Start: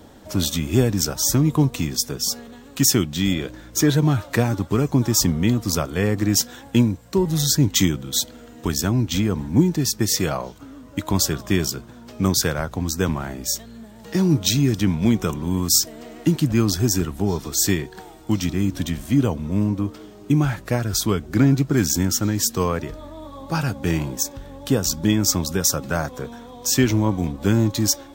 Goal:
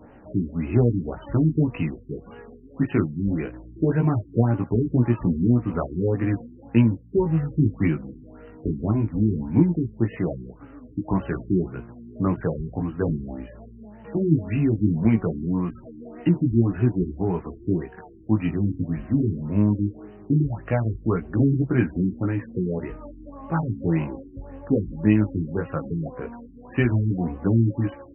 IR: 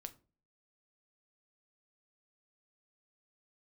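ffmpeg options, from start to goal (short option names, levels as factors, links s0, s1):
-af "flanger=delay=16.5:depth=2.6:speed=0.18,afftfilt=real='re*lt(b*sr/1024,400*pow(3100/400,0.5+0.5*sin(2*PI*1.8*pts/sr)))':imag='im*lt(b*sr/1024,400*pow(3100/400,0.5+0.5*sin(2*PI*1.8*pts/sr)))':win_size=1024:overlap=0.75,volume=1.19"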